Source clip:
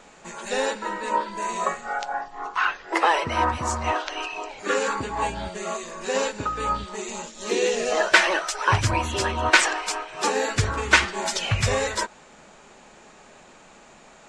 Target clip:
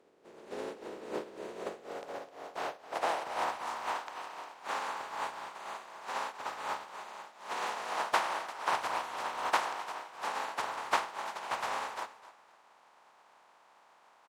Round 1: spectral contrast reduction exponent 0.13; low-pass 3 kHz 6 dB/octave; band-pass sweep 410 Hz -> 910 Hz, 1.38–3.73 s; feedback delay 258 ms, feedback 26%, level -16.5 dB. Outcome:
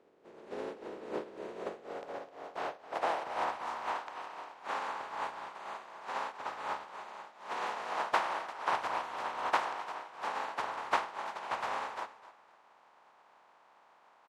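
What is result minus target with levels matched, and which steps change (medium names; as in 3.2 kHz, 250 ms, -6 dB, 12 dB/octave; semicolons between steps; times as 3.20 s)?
4 kHz band -3.0 dB
remove: low-pass 3 kHz 6 dB/octave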